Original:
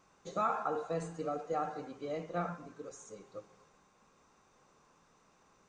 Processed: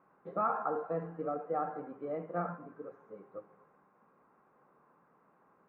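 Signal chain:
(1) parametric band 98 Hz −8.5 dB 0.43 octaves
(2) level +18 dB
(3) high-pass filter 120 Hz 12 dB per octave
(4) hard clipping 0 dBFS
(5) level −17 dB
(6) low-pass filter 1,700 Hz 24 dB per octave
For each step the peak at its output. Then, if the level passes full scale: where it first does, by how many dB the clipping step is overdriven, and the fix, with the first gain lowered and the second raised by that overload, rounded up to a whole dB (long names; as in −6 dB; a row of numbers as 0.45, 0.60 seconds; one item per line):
−21.0, −3.0, −3.0, −3.0, −20.0, −20.0 dBFS
no step passes full scale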